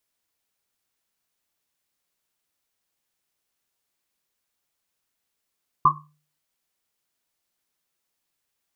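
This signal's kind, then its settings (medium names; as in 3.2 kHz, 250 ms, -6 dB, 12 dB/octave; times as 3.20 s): Risset drum, pitch 150 Hz, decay 0.46 s, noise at 1.1 kHz, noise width 160 Hz, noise 80%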